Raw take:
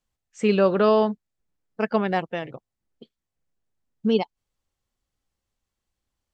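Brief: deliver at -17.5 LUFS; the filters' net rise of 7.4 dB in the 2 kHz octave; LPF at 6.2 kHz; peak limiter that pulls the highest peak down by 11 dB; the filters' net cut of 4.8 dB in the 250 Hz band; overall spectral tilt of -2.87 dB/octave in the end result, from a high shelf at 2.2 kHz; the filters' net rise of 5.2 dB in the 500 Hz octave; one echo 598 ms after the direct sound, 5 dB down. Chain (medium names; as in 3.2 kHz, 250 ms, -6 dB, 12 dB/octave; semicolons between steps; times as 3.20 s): low-pass 6.2 kHz; peaking EQ 250 Hz -9 dB; peaking EQ 500 Hz +8.5 dB; peaking EQ 2 kHz +4.5 dB; treble shelf 2.2 kHz +8.5 dB; peak limiter -15 dBFS; delay 598 ms -5 dB; trim +9.5 dB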